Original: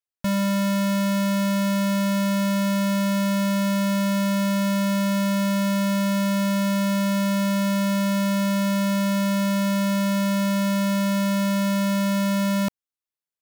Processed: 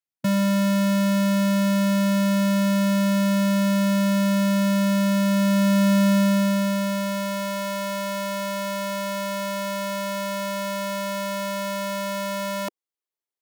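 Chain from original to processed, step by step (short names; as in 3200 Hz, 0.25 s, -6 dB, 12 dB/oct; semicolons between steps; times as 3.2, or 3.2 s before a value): high-pass sweep 140 Hz -> 370 Hz, 5.24–7.66; formant shift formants +3 st; gain -2.5 dB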